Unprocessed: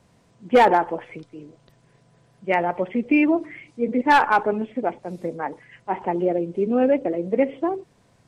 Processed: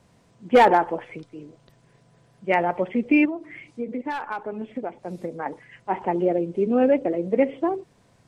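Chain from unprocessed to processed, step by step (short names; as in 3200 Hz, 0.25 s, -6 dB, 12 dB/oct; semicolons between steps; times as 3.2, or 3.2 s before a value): 3.25–5.46 compressor 16:1, threshold -26 dBFS, peak gain reduction 15.5 dB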